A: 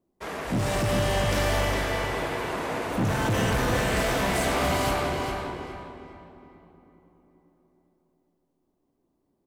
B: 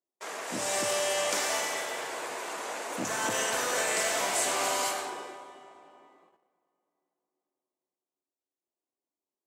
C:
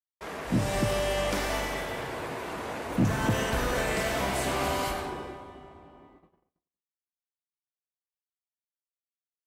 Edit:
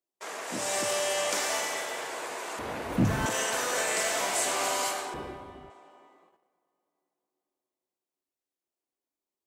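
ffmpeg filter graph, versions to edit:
-filter_complex "[2:a]asplit=2[s0][s1];[1:a]asplit=3[s2][s3][s4];[s2]atrim=end=2.592[s5];[s0]atrim=start=2.588:end=3.262[s6];[s3]atrim=start=3.258:end=5.142[s7];[s1]atrim=start=5.138:end=5.702[s8];[s4]atrim=start=5.698[s9];[s5][s6]acrossfade=d=0.004:c1=hsin:c2=hsin[s10];[s10][s7]acrossfade=d=0.004:c1=hsin:c2=hsin[s11];[s11][s8]acrossfade=d=0.004:c1=hsin:c2=hsin[s12];[s12][s9]acrossfade=d=0.004:c1=hsin:c2=hsin"

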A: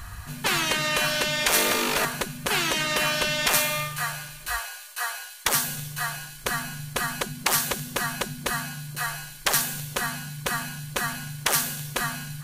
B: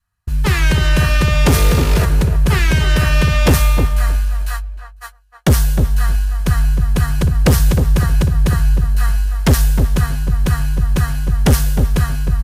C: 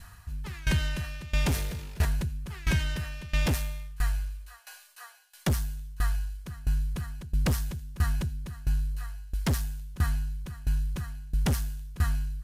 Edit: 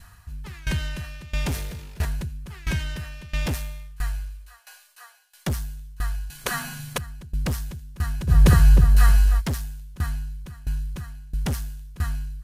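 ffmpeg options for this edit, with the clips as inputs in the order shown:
-filter_complex "[2:a]asplit=3[s0][s1][s2];[s0]atrim=end=6.302[s3];[0:a]atrim=start=6.298:end=6.982[s4];[s1]atrim=start=6.978:end=8.31[s5];[1:a]atrim=start=8.27:end=9.42[s6];[s2]atrim=start=9.38[s7];[s3][s4]acrossfade=d=0.004:c1=hsin:c2=hsin[s8];[s8][s5]acrossfade=d=0.004:c1=hsin:c2=hsin[s9];[s9][s6]acrossfade=d=0.04:c1=tri:c2=tri[s10];[s10][s7]acrossfade=d=0.04:c1=tri:c2=tri"

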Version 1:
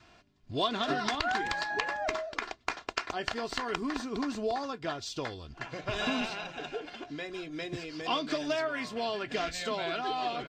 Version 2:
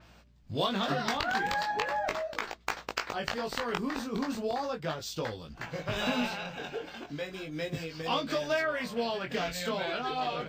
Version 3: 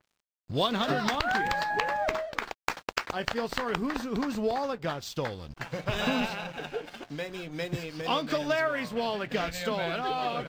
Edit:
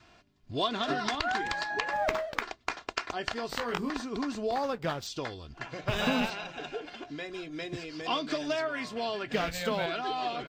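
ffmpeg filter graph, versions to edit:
-filter_complex "[2:a]asplit=4[s0][s1][s2][s3];[0:a]asplit=6[s4][s5][s6][s7][s8][s9];[s4]atrim=end=1.932[s10];[s0]atrim=start=1.928:end=2.422[s11];[s5]atrim=start=2.418:end=3.492[s12];[1:a]atrim=start=3.488:end=3.902[s13];[s6]atrim=start=3.898:end=4.522[s14];[s1]atrim=start=4.518:end=5.072[s15];[s7]atrim=start=5.068:end=5.882[s16];[s2]atrim=start=5.878:end=6.302[s17];[s8]atrim=start=6.298:end=9.332[s18];[s3]atrim=start=9.328:end=9.862[s19];[s9]atrim=start=9.858[s20];[s10][s11]acrossfade=d=0.004:c1=hsin:c2=hsin[s21];[s21][s12]acrossfade=d=0.004:c1=hsin:c2=hsin[s22];[s22][s13]acrossfade=d=0.004:c1=hsin:c2=hsin[s23];[s23][s14]acrossfade=d=0.004:c1=hsin:c2=hsin[s24];[s24][s15]acrossfade=d=0.004:c1=hsin:c2=hsin[s25];[s25][s16]acrossfade=d=0.004:c1=hsin:c2=hsin[s26];[s26][s17]acrossfade=d=0.004:c1=hsin:c2=hsin[s27];[s27][s18]acrossfade=d=0.004:c1=hsin:c2=hsin[s28];[s28][s19]acrossfade=d=0.004:c1=hsin:c2=hsin[s29];[s29][s20]acrossfade=d=0.004:c1=hsin:c2=hsin"

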